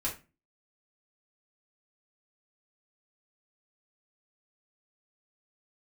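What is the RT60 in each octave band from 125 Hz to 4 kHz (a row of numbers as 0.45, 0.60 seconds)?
0.45, 0.45, 0.30, 0.25, 0.30, 0.25 seconds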